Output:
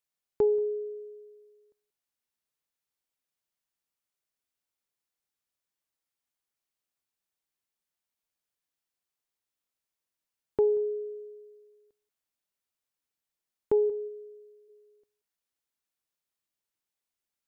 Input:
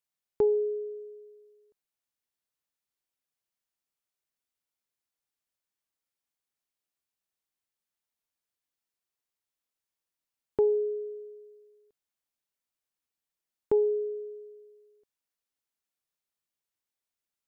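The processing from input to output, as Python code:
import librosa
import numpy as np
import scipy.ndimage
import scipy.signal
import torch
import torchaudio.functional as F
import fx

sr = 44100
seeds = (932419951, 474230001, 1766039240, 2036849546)

p1 = fx.hum_notches(x, sr, base_hz=60, count=7, at=(13.89, 14.68), fade=0.02)
y = p1 + fx.echo_single(p1, sr, ms=182, db=-22.5, dry=0)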